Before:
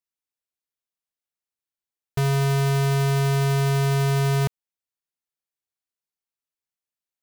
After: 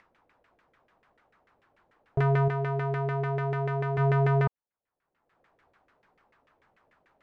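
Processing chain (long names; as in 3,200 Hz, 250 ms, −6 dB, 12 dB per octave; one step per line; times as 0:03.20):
0:02.48–0:03.98: low-shelf EQ 95 Hz −9 dB
brickwall limiter −22 dBFS, peak gain reduction 5.5 dB
upward compression, threshold −32 dBFS
auto-filter low-pass saw down 6.8 Hz 470–2,000 Hz
level −1.5 dB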